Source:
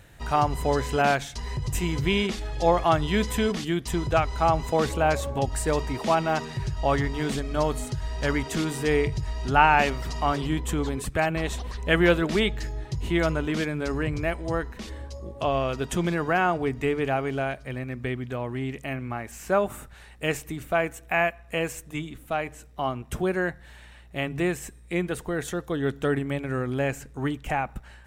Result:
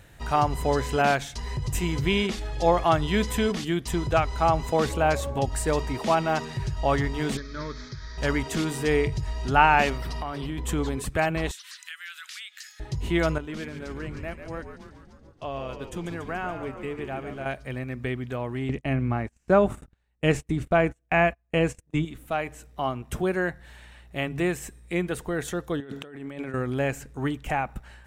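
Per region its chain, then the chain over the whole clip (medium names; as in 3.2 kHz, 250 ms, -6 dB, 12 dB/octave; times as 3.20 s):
7.37–8.18 s: one-bit delta coder 32 kbps, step -38.5 dBFS + bass shelf 400 Hz -8.5 dB + static phaser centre 2.8 kHz, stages 6
9.97–10.58 s: hard clipper -13 dBFS + peaking EQ 7 kHz -12 dB 0.32 oct + compression 12:1, threshold -27 dBFS
11.51–12.80 s: elliptic high-pass 1.4 kHz, stop band 70 dB + treble shelf 3 kHz +11 dB + compression 4:1, threshold -39 dBFS
13.38–17.46 s: expander -26 dBFS + compression 1.5:1, threshold -44 dBFS + frequency-shifting echo 142 ms, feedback 63%, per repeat -72 Hz, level -8.5 dB
18.69–22.05 s: low-pass 8.7 kHz + bass shelf 430 Hz +9.5 dB + gate -34 dBFS, range -32 dB
25.80–26.54 s: high-pass 170 Hz + treble shelf 11 kHz -9.5 dB + compressor with a negative ratio -38 dBFS
whole clip: none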